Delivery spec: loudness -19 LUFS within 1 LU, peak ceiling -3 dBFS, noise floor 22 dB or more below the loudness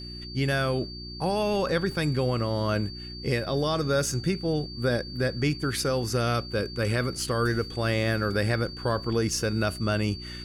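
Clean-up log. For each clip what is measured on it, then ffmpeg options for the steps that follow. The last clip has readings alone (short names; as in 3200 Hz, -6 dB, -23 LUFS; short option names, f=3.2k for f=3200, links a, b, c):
hum 60 Hz; harmonics up to 360 Hz; hum level -38 dBFS; steady tone 4600 Hz; tone level -40 dBFS; loudness -27.5 LUFS; peak -13.0 dBFS; loudness target -19.0 LUFS
-> -af "bandreject=f=60:t=h:w=4,bandreject=f=120:t=h:w=4,bandreject=f=180:t=h:w=4,bandreject=f=240:t=h:w=4,bandreject=f=300:t=h:w=4,bandreject=f=360:t=h:w=4"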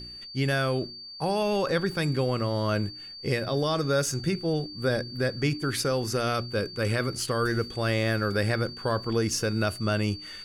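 hum none; steady tone 4600 Hz; tone level -40 dBFS
-> -af "bandreject=f=4.6k:w=30"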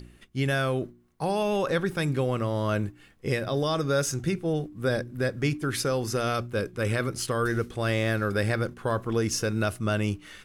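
steady tone none; loudness -28.0 LUFS; peak -14.0 dBFS; loudness target -19.0 LUFS
-> -af "volume=9dB"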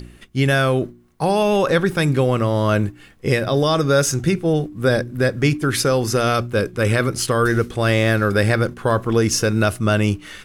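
loudness -19.0 LUFS; peak -5.0 dBFS; noise floor -47 dBFS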